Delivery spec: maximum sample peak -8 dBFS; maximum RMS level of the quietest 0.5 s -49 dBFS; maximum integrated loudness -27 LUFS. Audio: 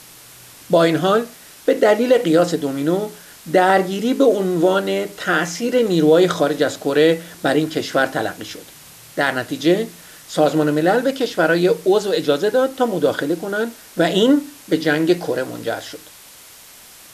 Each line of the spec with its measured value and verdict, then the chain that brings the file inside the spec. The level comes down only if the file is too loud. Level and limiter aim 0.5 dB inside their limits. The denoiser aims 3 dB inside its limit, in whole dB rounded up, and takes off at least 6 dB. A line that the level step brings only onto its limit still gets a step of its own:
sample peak -4.0 dBFS: fail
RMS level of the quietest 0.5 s -43 dBFS: fail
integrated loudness -18.0 LUFS: fail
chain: trim -9.5 dB

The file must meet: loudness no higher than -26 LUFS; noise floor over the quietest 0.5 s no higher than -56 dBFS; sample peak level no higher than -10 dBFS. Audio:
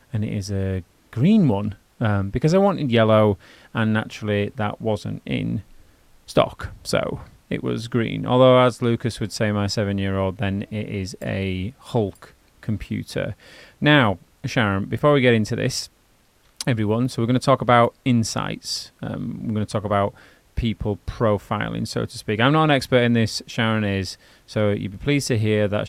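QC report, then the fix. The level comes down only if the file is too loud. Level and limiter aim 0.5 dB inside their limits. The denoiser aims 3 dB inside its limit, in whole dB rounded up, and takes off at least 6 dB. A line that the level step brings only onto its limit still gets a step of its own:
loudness -21.5 LUFS: fail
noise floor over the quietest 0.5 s -59 dBFS: pass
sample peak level -2.0 dBFS: fail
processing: trim -5 dB; peak limiter -10.5 dBFS

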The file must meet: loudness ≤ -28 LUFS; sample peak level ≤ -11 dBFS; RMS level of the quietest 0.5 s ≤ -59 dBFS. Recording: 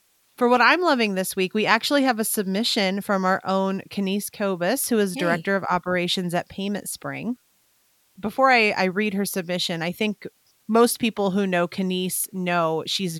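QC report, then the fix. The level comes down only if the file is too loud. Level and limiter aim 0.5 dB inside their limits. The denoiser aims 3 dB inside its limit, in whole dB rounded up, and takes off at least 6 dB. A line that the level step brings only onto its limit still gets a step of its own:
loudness -22.5 LUFS: fail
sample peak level -4.0 dBFS: fail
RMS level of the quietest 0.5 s -64 dBFS: pass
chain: trim -6 dB; peak limiter -11.5 dBFS

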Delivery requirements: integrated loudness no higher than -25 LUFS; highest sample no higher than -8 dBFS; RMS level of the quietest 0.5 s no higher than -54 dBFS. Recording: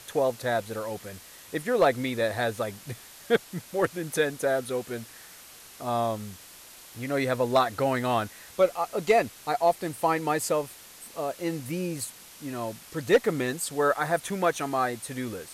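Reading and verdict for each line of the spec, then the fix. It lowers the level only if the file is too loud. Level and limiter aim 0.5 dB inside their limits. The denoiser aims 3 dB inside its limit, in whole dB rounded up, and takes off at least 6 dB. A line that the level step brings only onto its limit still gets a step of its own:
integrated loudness -28.0 LUFS: pass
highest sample -11.0 dBFS: pass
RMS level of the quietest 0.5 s -49 dBFS: fail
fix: noise reduction 8 dB, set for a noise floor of -49 dBFS

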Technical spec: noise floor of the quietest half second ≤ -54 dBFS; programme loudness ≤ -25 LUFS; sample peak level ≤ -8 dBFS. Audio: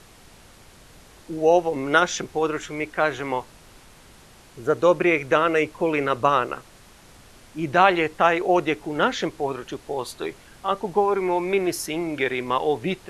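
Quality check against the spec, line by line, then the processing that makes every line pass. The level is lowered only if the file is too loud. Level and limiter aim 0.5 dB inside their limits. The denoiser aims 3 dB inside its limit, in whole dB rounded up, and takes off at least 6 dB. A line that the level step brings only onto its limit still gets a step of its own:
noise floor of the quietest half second -49 dBFS: fail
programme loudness -23.0 LUFS: fail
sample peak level -4.0 dBFS: fail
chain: noise reduction 6 dB, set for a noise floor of -49 dBFS; trim -2.5 dB; peak limiter -8.5 dBFS

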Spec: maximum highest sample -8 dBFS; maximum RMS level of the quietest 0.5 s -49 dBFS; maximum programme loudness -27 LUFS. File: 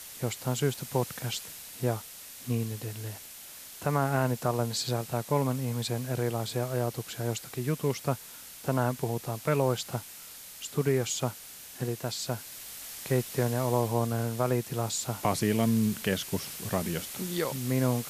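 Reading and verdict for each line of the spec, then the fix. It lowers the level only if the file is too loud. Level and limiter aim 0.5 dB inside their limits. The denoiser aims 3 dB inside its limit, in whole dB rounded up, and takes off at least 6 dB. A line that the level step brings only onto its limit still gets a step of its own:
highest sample -12.0 dBFS: pass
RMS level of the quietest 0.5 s -46 dBFS: fail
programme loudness -31.0 LUFS: pass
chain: noise reduction 6 dB, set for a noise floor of -46 dBFS

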